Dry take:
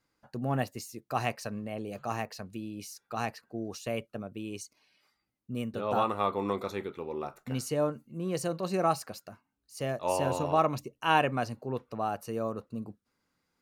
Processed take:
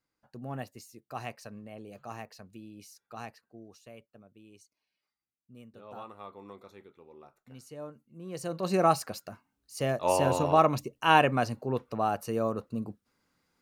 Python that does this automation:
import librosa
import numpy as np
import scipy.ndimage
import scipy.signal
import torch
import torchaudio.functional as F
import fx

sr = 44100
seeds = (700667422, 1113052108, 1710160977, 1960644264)

y = fx.gain(x, sr, db=fx.line((3.14, -8.0), (3.94, -16.5), (7.52, -16.5), (8.27, -9.0), (8.71, 3.5)))